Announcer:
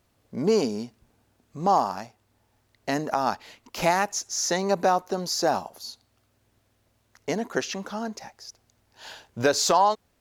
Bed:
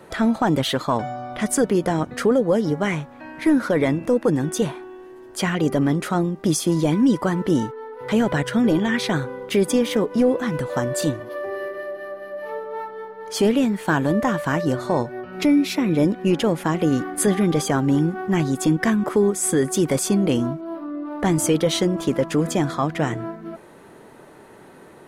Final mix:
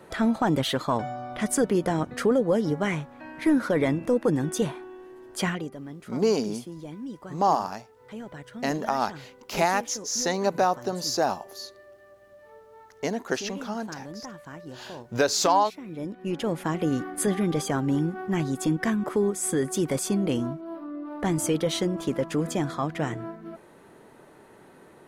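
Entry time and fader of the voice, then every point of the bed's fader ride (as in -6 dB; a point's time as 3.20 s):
5.75 s, -1.0 dB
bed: 5.49 s -4 dB
5.73 s -20 dB
15.80 s -20 dB
16.56 s -6 dB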